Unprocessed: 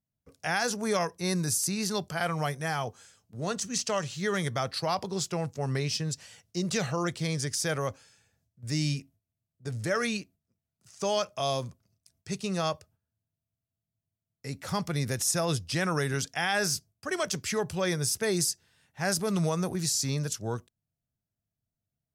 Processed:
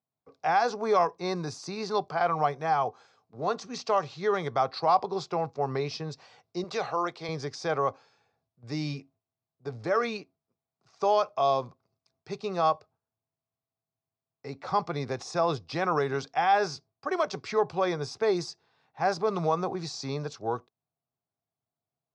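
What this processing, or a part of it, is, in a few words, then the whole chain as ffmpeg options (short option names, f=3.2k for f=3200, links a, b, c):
kitchen radio: -filter_complex "[0:a]highpass=170,equalizer=f=200:t=q:w=4:g=-7,equalizer=f=420:t=q:w=4:g=5,equalizer=f=770:t=q:w=4:g=10,equalizer=f=1.1k:t=q:w=4:g=8,equalizer=f=1.8k:t=q:w=4:g=-6,equalizer=f=3k:t=q:w=4:g=-9,lowpass=f=4.4k:w=0.5412,lowpass=f=4.4k:w=1.3066,asettb=1/sr,asplit=3[a][b][c];[a]atrim=end=6.644[d];[b]atrim=start=6.64:end=7.29,asetpts=PTS-STARTPTS,afade=t=in:d=0.004:c=qsin,afade=t=out:st=0.646:d=0.004:c=qsin,highpass=f=440:p=1[e];[c]atrim=start=7.286[f];[d][e]acrossfade=d=0.004:c1=hsin:c2=qsin[g];[g][f]acrossfade=d=0.004:c1=qsin:c2=hsin"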